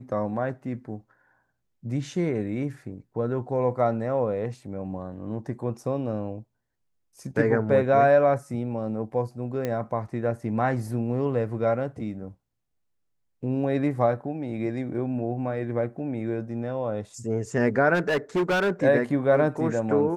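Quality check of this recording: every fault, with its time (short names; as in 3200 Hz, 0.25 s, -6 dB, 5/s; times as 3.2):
9.65 pop -15 dBFS
17.94–18.71 clipped -20 dBFS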